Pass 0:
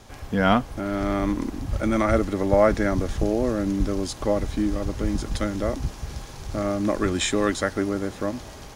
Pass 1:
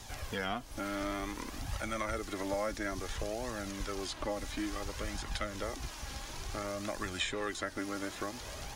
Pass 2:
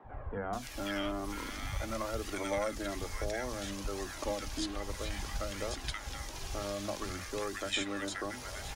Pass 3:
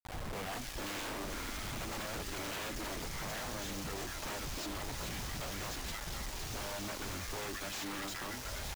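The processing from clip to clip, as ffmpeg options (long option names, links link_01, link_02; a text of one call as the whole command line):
ffmpeg -i in.wav -filter_complex "[0:a]acrossover=split=680|3200[link_01][link_02][link_03];[link_01]acompressor=threshold=-36dB:ratio=4[link_04];[link_02]acompressor=threshold=-37dB:ratio=4[link_05];[link_03]acompressor=threshold=-54dB:ratio=4[link_06];[link_04][link_05][link_06]amix=inputs=3:normalize=0,flanger=delay=1:depth=2.8:regen=42:speed=0.57:shape=triangular,highshelf=frequency=2300:gain=10.5" out.wav
ffmpeg -i in.wav -filter_complex "[0:a]acrossover=split=220|1400[link_01][link_02][link_03];[link_01]adelay=40[link_04];[link_03]adelay=530[link_05];[link_04][link_02][link_05]amix=inputs=3:normalize=0,volume=1.5dB" out.wav
ffmpeg -i in.wav -af "lowshelf=frequency=93:gain=5.5,aresample=16000,aeval=exprs='0.0158*(abs(mod(val(0)/0.0158+3,4)-2)-1)':channel_layout=same,aresample=44100,acrusher=bits=6:mix=0:aa=0.000001,volume=-1dB" out.wav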